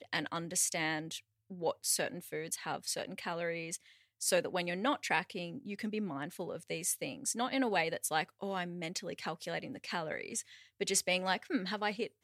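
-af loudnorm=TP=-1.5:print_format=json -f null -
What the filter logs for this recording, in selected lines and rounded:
"input_i" : "-35.7",
"input_tp" : "-15.4",
"input_lra" : "1.6",
"input_thresh" : "-45.8",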